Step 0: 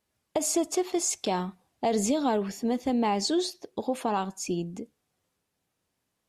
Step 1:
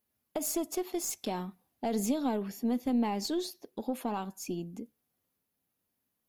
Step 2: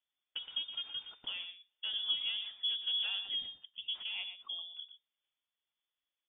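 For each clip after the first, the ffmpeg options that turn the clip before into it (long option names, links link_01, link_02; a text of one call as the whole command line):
ffmpeg -i in.wav -af "aeval=exprs='0.188*(cos(1*acos(clip(val(0)/0.188,-1,1)))-cos(1*PI/2))+0.0237*(cos(2*acos(clip(val(0)/0.188,-1,1)))-cos(2*PI/2))':channel_layout=same,equalizer=frequency=240:width=2.8:gain=6.5,aexciter=amount=6.4:drive=3.4:freq=11000,volume=-7.5dB" out.wav
ffmpeg -i in.wav -af "aphaser=in_gain=1:out_gain=1:delay=3.6:decay=0.25:speed=1.9:type=sinusoidal,aecho=1:1:119:0.316,lowpass=frequency=3100:width_type=q:width=0.5098,lowpass=frequency=3100:width_type=q:width=0.6013,lowpass=frequency=3100:width_type=q:width=0.9,lowpass=frequency=3100:width_type=q:width=2.563,afreqshift=-3600,volume=-6.5dB" out.wav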